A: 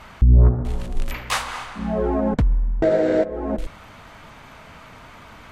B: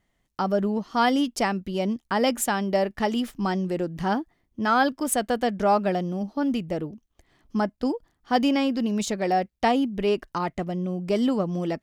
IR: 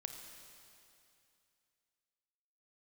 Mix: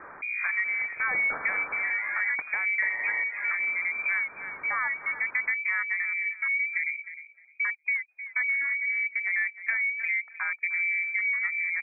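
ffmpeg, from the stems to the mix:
-filter_complex "[0:a]highpass=f=1.3k:p=1,acompressor=threshold=-30dB:ratio=3,volume=-2.5dB[a];[1:a]afwtdn=0.0398,lowshelf=f=420:g=7.5,aphaser=in_gain=1:out_gain=1:delay=1.7:decay=0.32:speed=0.74:type=sinusoidal,adelay=50,volume=-11dB,asplit=2[b][c];[c]volume=-17dB,aecho=0:1:307|614|921:1|0.18|0.0324[d];[a][b][d]amix=inputs=3:normalize=0,acontrast=67,lowpass=f=2.1k:t=q:w=0.5098,lowpass=f=2.1k:t=q:w=0.6013,lowpass=f=2.1k:t=q:w=0.9,lowpass=f=2.1k:t=q:w=2.563,afreqshift=-2500,acompressor=threshold=-27dB:ratio=2.5"

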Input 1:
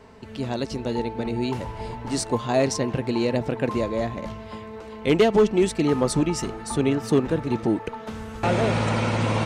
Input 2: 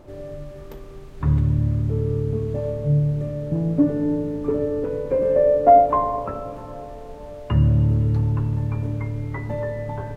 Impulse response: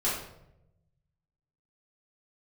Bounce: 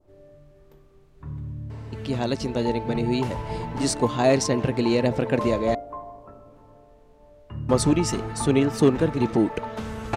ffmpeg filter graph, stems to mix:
-filter_complex "[0:a]adelay=1700,volume=2dB,asplit=3[a][b][c];[a]atrim=end=5.75,asetpts=PTS-STARTPTS,afade=t=out:st=5.746:d=0.004:c=hsin[d];[b]atrim=start=5.75:end=7.69,asetpts=PTS-STARTPTS,volume=0[e];[c]atrim=start=7.69,asetpts=PTS-STARTPTS,afade=t=in:d=0.004:c=hsin[f];[d][e][f]concat=n=3:v=0:a=1[g];[1:a]adynamicequalizer=threshold=0.0126:dfrequency=2400:dqfactor=0.84:tfrequency=2400:tqfactor=0.84:attack=5:release=100:ratio=0.375:range=1.5:mode=cutabove:tftype=bell,volume=-17.5dB,asplit=2[h][i];[i]volume=-16dB[j];[2:a]atrim=start_sample=2205[k];[j][k]afir=irnorm=-1:irlink=0[l];[g][h][l]amix=inputs=3:normalize=0"

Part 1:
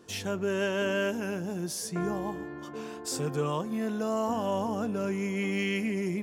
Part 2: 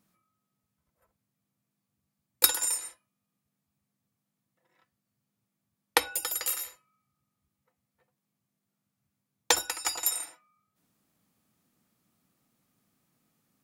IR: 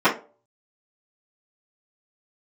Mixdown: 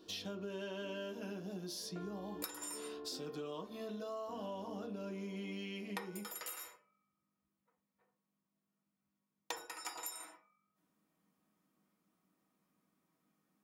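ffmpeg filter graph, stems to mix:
-filter_complex "[0:a]equalizer=f=125:t=o:w=1:g=-12,equalizer=f=500:t=o:w=1:g=-3,equalizer=f=1k:t=o:w=1:g=-5,equalizer=f=2k:t=o:w=1:g=-9,equalizer=f=4k:t=o:w=1:g=12,equalizer=f=8k:t=o:w=1:g=-11,volume=-5dB,asplit=2[a][b];[b]volume=-20.5dB[c];[1:a]volume=-12.5dB,asplit=2[d][e];[e]volume=-14dB[f];[2:a]atrim=start_sample=2205[g];[c][f]amix=inputs=2:normalize=0[h];[h][g]afir=irnorm=-1:irlink=0[i];[a][d][i]amix=inputs=3:normalize=0,acompressor=threshold=-41dB:ratio=6"

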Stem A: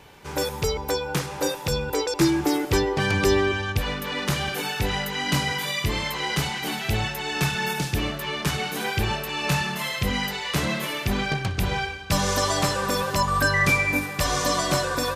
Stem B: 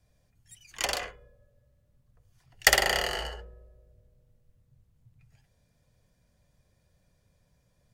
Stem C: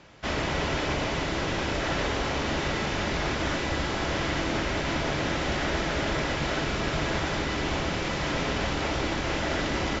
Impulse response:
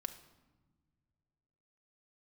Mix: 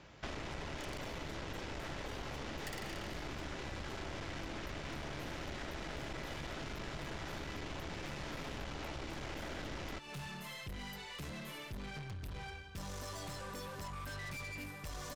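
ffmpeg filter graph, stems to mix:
-filter_complex "[0:a]lowshelf=f=110:g=6.5,asoftclip=type=tanh:threshold=-26.5dB,adelay=650,volume=-12.5dB[a];[1:a]volume=-8.5dB[b];[2:a]volume=-3dB[c];[a][b][c]amix=inputs=3:normalize=0,lowshelf=f=120:g=4,aeval=exprs='(tanh(31.6*val(0)+0.6)-tanh(0.6))/31.6':c=same,acompressor=threshold=-40dB:ratio=6"

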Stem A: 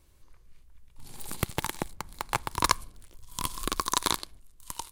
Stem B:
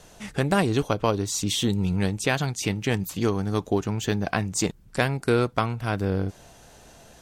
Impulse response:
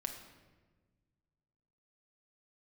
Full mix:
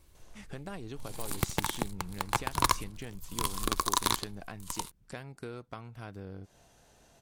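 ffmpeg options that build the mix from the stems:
-filter_complex "[0:a]asoftclip=type=tanh:threshold=-13dB,volume=1dB[a];[1:a]acompressor=threshold=-31dB:ratio=2.5,adelay=150,volume=-11.5dB[b];[a][b]amix=inputs=2:normalize=0"

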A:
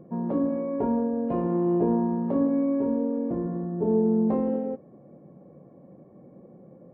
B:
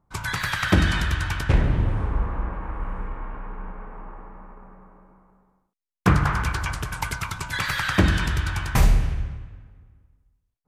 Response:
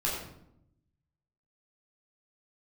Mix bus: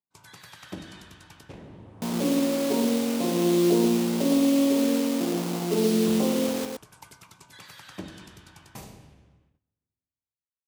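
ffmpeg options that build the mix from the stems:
-filter_complex "[0:a]acrusher=bits=4:mix=0:aa=0.000001,adelay=1900,volume=2dB,asplit=2[a][b];[b]volume=-5dB[c];[1:a]volume=-15dB,asplit=3[d][e][f];[e]volume=-19.5dB[g];[f]volume=-17dB[h];[2:a]atrim=start_sample=2205[i];[g][i]afir=irnorm=-1:irlink=0[j];[c][h]amix=inputs=2:normalize=0,aecho=0:1:115:1[k];[a][d][j][k]amix=inputs=4:normalize=0,agate=range=-13dB:threshold=-48dB:ratio=16:detection=peak,highpass=220,equalizer=f=1.6k:w=0.86:g=-11"

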